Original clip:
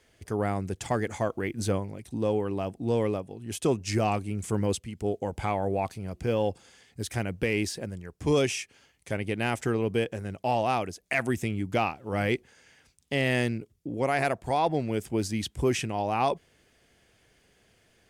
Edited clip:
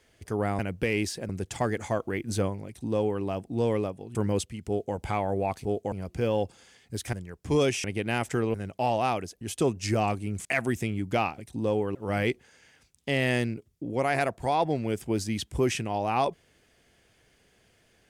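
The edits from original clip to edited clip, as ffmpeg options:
-filter_complex "[0:a]asplit=13[a][b][c][d][e][f][g][h][i][j][k][l][m];[a]atrim=end=0.592[n];[b]atrim=start=7.188:end=7.892[o];[c]atrim=start=0.588:end=3.452[p];[d]atrim=start=4.488:end=5.982[q];[e]atrim=start=5.008:end=5.292[r];[f]atrim=start=5.978:end=7.192[s];[g]atrim=start=7.888:end=8.602[t];[h]atrim=start=9.158:end=9.862[u];[i]atrim=start=10.188:end=11.062[v];[j]atrim=start=3.448:end=4.492[w];[k]atrim=start=11.058:end=11.992[x];[l]atrim=start=1.958:end=2.532[y];[m]atrim=start=11.988[z];[n][o]acrossfade=d=0.004:c1=hsin:c2=hsin[aa];[aa][p]acrossfade=d=0.004:c1=hsin:c2=hsin[ab];[ab][q]acrossfade=d=0.004:c1=hsin:c2=hsin[ac];[ac][r]acrossfade=d=0.004:c1=hsin:c2=hsin[ad];[ad][s]acrossfade=d=0.004:c1=hsin:c2=hsin[ae];[ae][t]acrossfade=d=0.004:c1=hsin:c2=hsin[af];[af][u]acrossfade=d=0.004:c1=hsin:c2=hsin[ag];[ag][v]acrossfade=d=0.004:c1=hsin:c2=hsin[ah];[ah][w]acrossfade=d=0.004:c1=hsin:c2=hsin[ai];[ai][x]acrossfade=d=0.004:c1=hsin:c2=hsin[aj];[aj][y]acrossfade=d=0.004:c1=hsin:c2=hsin[ak];[ak][z]acrossfade=d=0.004:c1=hsin:c2=hsin"

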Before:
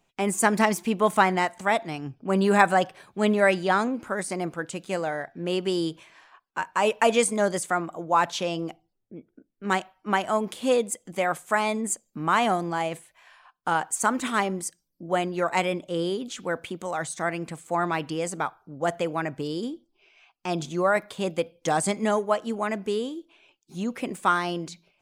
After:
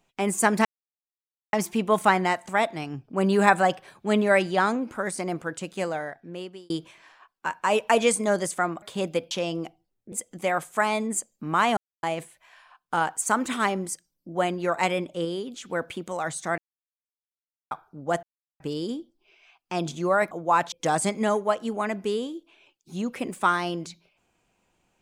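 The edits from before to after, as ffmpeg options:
-filter_complex "[0:a]asplit=16[a][b][c][d][e][f][g][h][i][j][k][l][m][n][o][p];[a]atrim=end=0.65,asetpts=PTS-STARTPTS,afade=t=out:st=0.646:d=0.004:c=hsin,apad=pad_dur=0.88[q];[b]atrim=start=0.65:end=5.82,asetpts=PTS-STARTPTS,afade=t=in:d=0.004:c=hsin,afade=t=out:st=4.29:d=0.88[r];[c]atrim=start=5.82:end=7.942,asetpts=PTS-STARTPTS,afade=t=in:d=0.004:c=hsin[s];[d]atrim=start=21.048:end=21.542[t];[e]atrim=start=8.348:end=9.162[u];[f]atrim=start=10.858:end=12.51,asetpts=PTS-STARTPTS,afade=t=out:st=1.648:d=0.004:c=hsin[v];[g]atrim=start=12.51:end=12.77,asetpts=PTS-STARTPTS,volume=0[w];[h]atrim=start=12.77:end=15.992,asetpts=PTS-STARTPTS,afade=t=in:d=0.004:c=hsin[x];[i]atrim=start=15.988:end=16.442,asetpts=PTS-STARTPTS,volume=-3.5dB[y];[j]atrim=start=16.438:end=17.32,asetpts=PTS-STARTPTS,afade=t=out:st=0.878:d=0.004:c=hsin[z];[k]atrim=start=17.32:end=18.45,asetpts=PTS-STARTPTS,volume=0[aa];[l]atrim=start=18.45:end=18.97,asetpts=PTS-STARTPTS,afade=t=in:d=0.004:c=hsin,afade=t=out:st=0.516:d=0.004:c=hsin[ab];[m]atrim=start=18.97:end=19.34,asetpts=PTS-STARTPTS,volume=0[ac];[n]atrim=start=19.34:end=21.052,asetpts=PTS-STARTPTS,afade=t=in:d=0.004:c=hsin[ad];[o]atrim=start=7.938:end=8.352[ae];[p]atrim=start=21.538[af];[q][r][s]concat=n=3:v=0:a=1[ag];[ag][t]acrossfade=d=0.004:c1=hsin:c2=hsin[ah];[ah][u]acrossfade=d=0.004:c1=hsin:c2=hsin[ai];[v][w][x]concat=n=3:v=0:a=1[aj];[ai][aj]acrossfade=d=0.004:c1=hsin:c2=hsin[ak];[ak][y]acrossfade=d=0.004:c1=hsin:c2=hsin[al];[z][aa][ab][ac][ad]concat=n=5:v=0:a=1[am];[al][am]acrossfade=d=0.004:c1=hsin:c2=hsin[an];[an][ae]acrossfade=d=0.004:c1=hsin:c2=hsin[ao];[ao][af]acrossfade=d=0.004:c1=hsin:c2=hsin"

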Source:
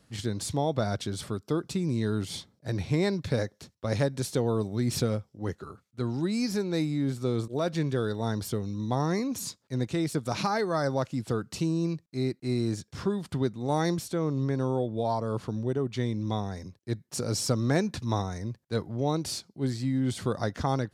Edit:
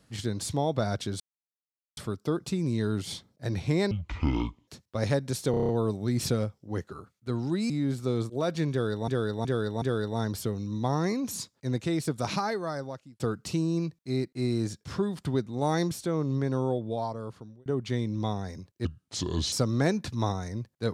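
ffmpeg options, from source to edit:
-filter_complex "[0:a]asplit=18[a][b][c][d][e][f][g][h][i][j][k][l][m][n][o][p][q][r];[a]atrim=end=1.2,asetpts=PTS-STARTPTS,afade=t=out:st=1.196:d=0.004:c=hsin,apad=pad_dur=0.77[s];[b]atrim=start=1.2:end=3.144,asetpts=PTS-STARTPTS,afade=t=in:d=0.004:c=hsin[t];[c]atrim=start=3.14:end=3.57,asetpts=PTS-STARTPTS,asetrate=24696,aresample=44100,atrim=end_sample=33862,asetpts=PTS-STARTPTS[u];[d]atrim=start=3.566:end=4.432[v];[e]atrim=start=4.398:end=4.432[w];[f]atrim=start=4.398:end=4.432[x];[g]atrim=start=4.398:end=4.432[y];[h]atrim=start=4.398:end=4.432[z];[i]atrim=start=4.398:end=4.432[aa];[j]atrim=start=4.398:end=6.412[ab];[k]atrim=start=6.878:end=8.262[ac];[l]atrim=start=7.888:end=8.262[ad];[m]atrim=start=7.888:end=8.262[ae];[n]atrim=start=7.888:end=11.27,asetpts=PTS-STARTPTS,afade=t=out:st=2.452:d=0.93[af];[o]atrim=start=11.27:end=15.73,asetpts=PTS-STARTPTS,afade=t=in:d=0.004:c=hsin,afade=t=out:st=3.51:d=0.95[ag];[p]atrim=start=15.73:end=16.924,asetpts=PTS-STARTPTS,afade=t=in:d=0.004:c=hsin[ah];[q]atrim=start=16.92:end=17.42,asetpts=PTS-STARTPTS,asetrate=32634,aresample=44100,atrim=end_sample=29797,asetpts=PTS-STARTPTS[ai];[r]atrim=start=17.416[aj];[s][t]concat=n=2:v=0:a=1[ak];[ak][u]acrossfade=d=0.004:c1=hsin:c2=hsin[al];[al][v]acrossfade=d=0.004:c1=hsin:c2=hsin[am];[am][w]acrossfade=d=0.004:c1=hsin:c2=hsin[an];[an][x]acrossfade=d=0.004:c1=hsin:c2=hsin[ao];[ao][y]acrossfade=d=0.004:c1=hsin:c2=hsin[ap];[ap][z]acrossfade=d=0.004:c1=hsin:c2=hsin[aq];[aq][aa]acrossfade=d=0.004:c1=hsin:c2=hsin[ar];[ar][ab]acrossfade=d=0.004:c1=hsin:c2=hsin[as];[as][ac]acrossfade=d=0.004:c1=hsin:c2=hsin[at];[at][ad]acrossfade=d=0.004:c1=hsin:c2=hsin[au];[au][ae]acrossfade=d=0.004:c1=hsin:c2=hsin[av];[af][ag][ah]concat=n=3:v=0:a=1[aw];[av][aw]acrossfade=d=0.004:c1=hsin:c2=hsin[ax];[ax][ai]acrossfade=d=0.004:c1=hsin:c2=hsin[ay];[ay][aj]acrossfade=d=0.004:c1=hsin:c2=hsin"

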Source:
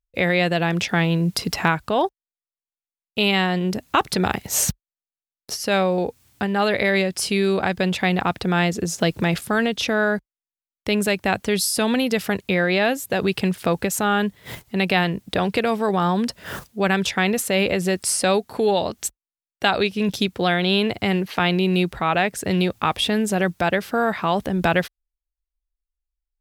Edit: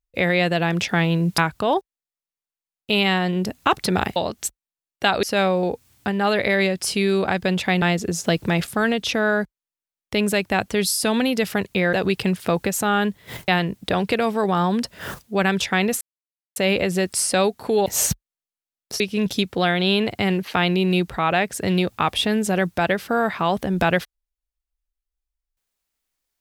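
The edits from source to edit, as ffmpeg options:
-filter_complex "[0:a]asplit=10[a][b][c][d][e][f][g][h][i][j];[a]atrim=end=1.382[k];[b]atrim=start=1.658:end=4.442[l];[c]atrim=start=18.758:end=19.832[m];[d]atrim=start=5.578:end=8.172[n];[e]atrim=start=8.558:end=12.672[o];[f]atrim=start=13.108:end=14.662[p];[g]atrim=start=14.928:end=17.46,asetpts=PTS-STARTPTS,afade=t=out:st=2.528:d=0.004:c=hsin,apad=pad_dur=0.55[q];[h]atrim=start=17.46:end=18.762,asetpts=PTS-STARTPTS,afade=t=in:d=0.004:c=hsin[r];[i]atrim=start=4.438:end=5.582[s];[j]atrim=start=19.828[t];[k][l]acrossfade=d=0.004:c1=hsin:c2=hsin[u];[u][m]acrossfade=d=0.004:c1=hsin:c2=hsin[v];[v][n]acrossfade=d=0.004:c1=hsin:c2=hsin[w];[w][o]acrossfade=d=0.004:c1=hsin:c2=hsin[x];[x][p]acrossfade=d=0.004:c1=hsin:c2=hsin[y];[q][r]concat=n=2:v=0:a=1[z];[y][z]acrossfade=d=0.004:c1=hsin:c2=hsin[aa];[aa][s]acrossfade=d=0.004:c1=hsin:c2=hsin[ab];[ab][t]acrossfade=d=0.004:c1=hsin:c2=hsin"

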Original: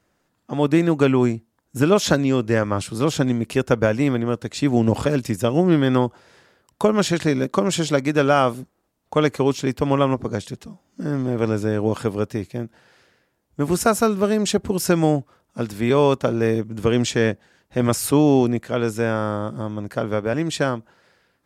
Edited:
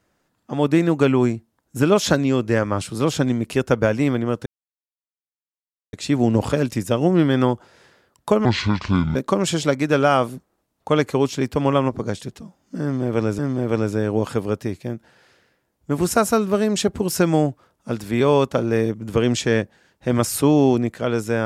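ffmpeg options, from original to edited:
-filter_complex "[0:a]asplit=5[a][b][c][d][e];[a]atrim=end=4.46,asetpts=PTS-STARTPTS,afade=t=out:st=4.456:d=0.004:c=hsin,apad=pad_dur=1.47[f];[b]atrim=start=4.46:end=6.984,asetpts=PTS-STARTPTS,afade=t=in:d=0.004:c=hsin[g];[c]atrim=start=6.98:end=7.41,asetpts=PTS-STARTPTS,asetrate=26901,aresample=44100[h];[d]atrim=start=7.406:end=11.642[i];[e]atrim=start=11.078[j];[f][g]concat=n=2:v=0:a=1[k];[k][h]acrossfade=d=0.004:c1=hsin:c2=hsin[l];[l][i]acrossfade=d=0.004:c1=hsin:c2=hsin[m];[m][j]acrossfade=d=0.004:c1=hsin:c2=hsin"

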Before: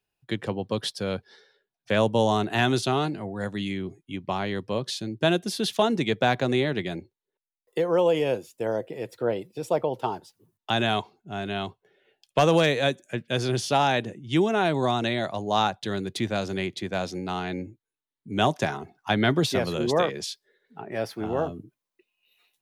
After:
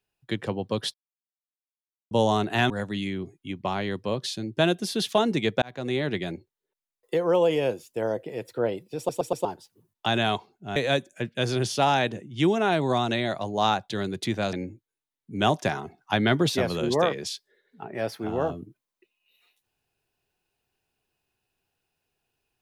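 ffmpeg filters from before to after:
-filter_complex "[0:a]asplit=11[a][b][c][d][e][f][g][h][i][j][k];[a]atrim=end=0.94,asetpts=PTS-STARTPTS,afade=t=out:st=0.936:d=0.004:c=hsin[l];[b]atrim=start=0.94:end=2.11,asetpts=PTS-STARTPTS,volume=0[m];[c]atrim=start=2.11:end=2.702,asetpts=PTS-STARTPTS,afade=t=in:d=0.004:c=hsin[n];[d]atrim=start=3.338:end=6.26,asetpts=PTS-STARTPTS,afade=t=out:st=2.918:d=0.004:c=hsin[o];[e]atrim=start=6.26:end=9.732,asetpts=PTS-STARTPTS,afade=t=in:d=0.48[p];[f]atrim=start=9.608:end=9.732[q];[g]atrim=start=9.608:end=9.732[r];[h]atrim=start=9.608:end=9.732[s];[i]atrim=start=10.088:end=11.402[t];[j]atrim=start=12.688:end=16.462[u];[k]atrim=start=17.498[v];[l][m][n]concat=n=3:v=0:a=1[w];[o][p]concat=n=2:v=0:a=1[x];[w][x]acrossfade=d=0.004:c1=hsin:c2=hsin[y];[y][q]acrossfade=d=0.004:c1=hsin:c2=hsin[z];[z][r]acrossfade=d=0.004:c1=hsin:c2=hsin[aa];[aa][s]acrossfade=d=0.004:c1=hsin:c2=hsin[ab];[ab][t]acrossfade=d=0.004:c1=hsin:c2=hsin[ac];[ac][u]acrossfade=d=0.004:c1=hsin:c2=hsin[ad];[ad][v]acrossfade=d=0.004:c1=hsin:c2=hsin"

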